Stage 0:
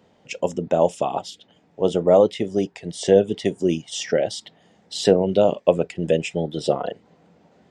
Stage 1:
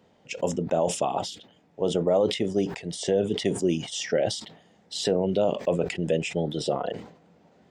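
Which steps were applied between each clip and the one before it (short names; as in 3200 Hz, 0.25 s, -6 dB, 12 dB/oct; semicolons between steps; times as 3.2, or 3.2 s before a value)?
limiter -10.5 dBFS, peak gain reduction 9 dB; sustainer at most 100 dB/s; gain -3 dB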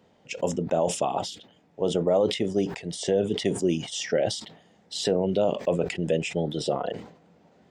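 nothing audible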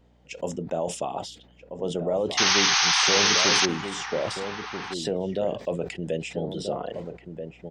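painted sound noise, 2.37–3.66, 720–6500 Hz -17 dBFS; hum 60 Hz, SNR 34 dB; outdoor echo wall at 220 m, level -7 dB; gain -4 dB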